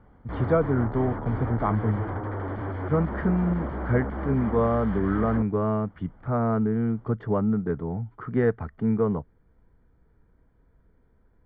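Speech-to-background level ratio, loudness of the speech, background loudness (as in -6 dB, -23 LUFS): 6.5 dB, -26.5 LUFS, -33.0 LUFS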